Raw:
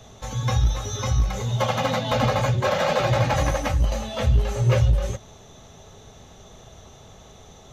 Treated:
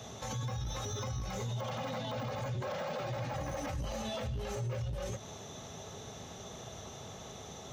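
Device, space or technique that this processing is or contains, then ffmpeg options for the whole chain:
broadcast voice chain: -af "highpass=94,deesser=0.95,acompressor=threshold=0.0282:ratio=4,equalizer=f=5400:t=o:w=0.25:g=3.5,alimiter=level_in=2.24:limit=0.0631:level=0:latency=1:release=30,volume=0.447,volume=1.12"

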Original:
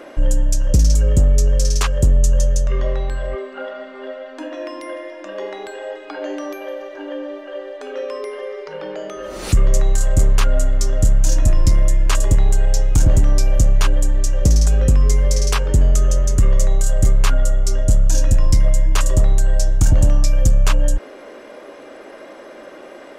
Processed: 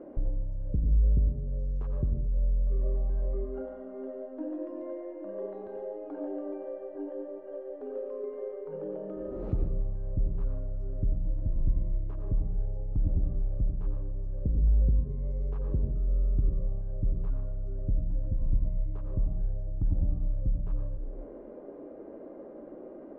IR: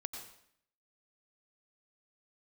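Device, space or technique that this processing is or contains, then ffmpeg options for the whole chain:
television next door: -filter_complex "[0:a]acompressor=threshold=0.0562:ratio=4,lowpass=410[s0];[1:a]atrim=start_sample=2205[s1];[s0][s1]afir=irnorm=-1:irlink=0"

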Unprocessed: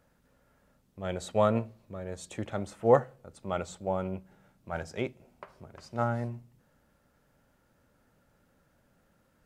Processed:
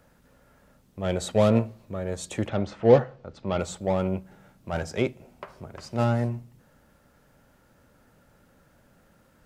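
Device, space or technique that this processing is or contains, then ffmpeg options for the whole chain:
one-band saturation: -filter_complex "[0:a]acrossover=split=580|2700[s0][s1][s2];[s1]asoftclip=type=tanh:threshold=0.0133[s3];[s0][s3][s2]amix=inputs=3:normalize=0,asettb=1/sr,asplit=3[s4][s5][s6];[s4]atrim=end=2.484[s7];[s5]atrim=start=2.48:end=3.59,asetpts=PTS-STARTPTS,afade=t=in:d=0.004:c=qsin,afade=t=out:st=1.106:d=0.004:c=qsin,lowpass=f=5200:w=0.5412,lowpass=f=5200:w=1.3066[s8];[s6]atrim=start=3.586[s9];[s7][s8]acrossfade=d=0.004:c1=hsin:c2=qsin[s10];[s10][s9]acrossfade=d=0.004:c1=qsin:c2=hsin,volume=2.51"

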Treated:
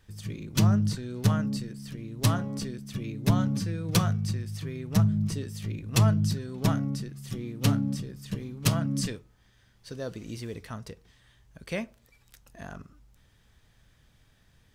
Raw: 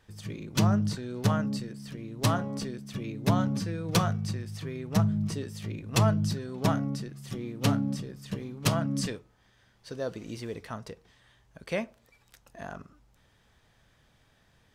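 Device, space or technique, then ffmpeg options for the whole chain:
smiley-face EQ: -af "lowshelf=f=100:g=7.5,equalizer=f=740:t=o:w=1.7:g=-4.5,highshelf=f=9000:g=5.5"

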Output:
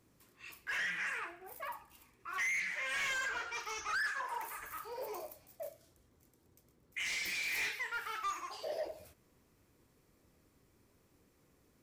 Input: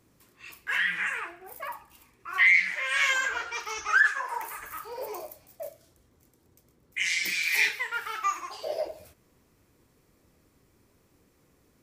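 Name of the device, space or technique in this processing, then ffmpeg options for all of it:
saturation between pre-emphasis and de-emphasis: -af "highshelf=f=7100:g=8.5,asoftclip=type=tanh:threshold=0.0447,highshelf=f=7100:g=-8.5,volume=0.562"

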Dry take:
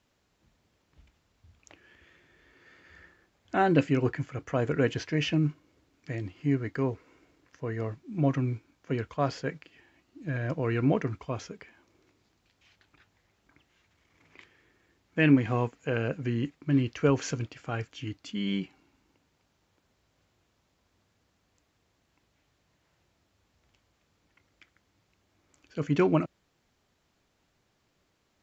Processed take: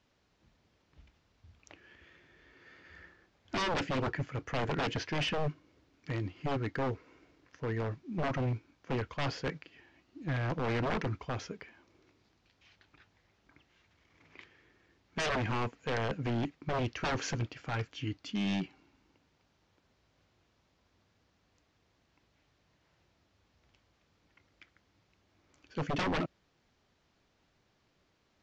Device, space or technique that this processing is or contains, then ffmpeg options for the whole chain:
synthesiser wavefolder: -af "aeval=exprs='0.0473*(abs(mod(val(0)/0.0473+3,4)-2)-1)':c=same,lowpass=f=6200:w=0.5412,lowpass=f=6200:w=1.3066"

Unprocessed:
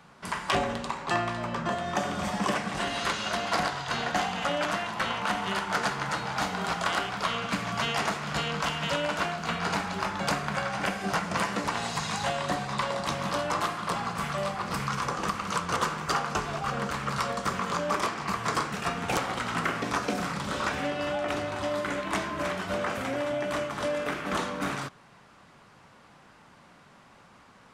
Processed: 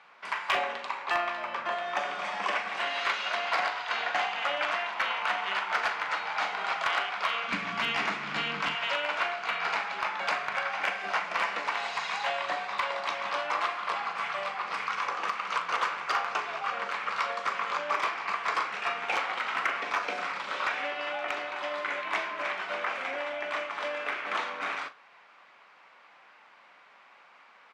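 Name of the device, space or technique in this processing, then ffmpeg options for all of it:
megaphone: -filter_complex "[0:a]highpass=680,lowpass=3700,equalizer=f=2300:t=o:w=0.45:g=6,asoftclip=type=hard:threshold=0.119,asplit=2[s0][s1];[s1]adelay=40,volume=0.237[s2];[s0][s2]amix=inputs=2:normalize=0,asettb=1/sr,asplit=3[s3][s4][s5];[s3]atrim=end=7.484[s6];[s4]atrim=start=7.48:end=8.75,asetpts=PTS-STARTPTS,afade=t=in:d=0.004:c=qsin,afade=t=out:st=1.266:d=0.004:c=qsin,lowshelf=f=380:t=q:w=1.5:g=12[s7];[s5]atrim=start=8.746[s8];[s6][s7]acrossfade=d=0.004:c1=hsin:c2=qsin[s9];[s9][s8]acrossfade=d=0.004:c1=qsin:c2=hsin"

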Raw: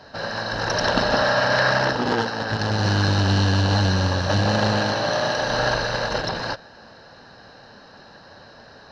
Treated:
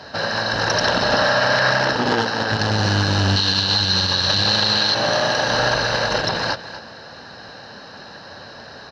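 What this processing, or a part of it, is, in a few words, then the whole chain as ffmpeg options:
mastering chain: -filter_complex "[0:a]asettb=1/sr,asplit=3[s0][s1][s2];[s0]atrim=end=3.364[s3];[s1]atrim=start=3.36:end=4.95,asetpts=PTS-STARTPTS,afade=t=in:d=0.004:c=qsin,afade=t=out:st=1.586:d=0.004:c=qsin,equalizer=f=100:t=o:w=0.67:g=-5,equalizer=f=250:t=o:w=0.67:g=-7,equalizer=f=630:t=o:w=0.67:g=-6,equalizer=f=4000:t=o:w=0.67:g=11[s4];[s2]atrim=start=4.946[s5];[s3][s4]acrossfade=d=0.004:c1=hsin:c2=qsin[s6];[s6][s5]acrossfade=d=0.004:c1=qsin:c2=hsin,highpass=56,equalizer=f=3900:t=o:w=2.7:g=3.5,aecho=1:1:242:0.158,acompressor=threshold=0.0398:ratio=1.5,alimiter=level_in=3.98:limit=0.891:release=50:level=0:latency=1,volume=0.501"

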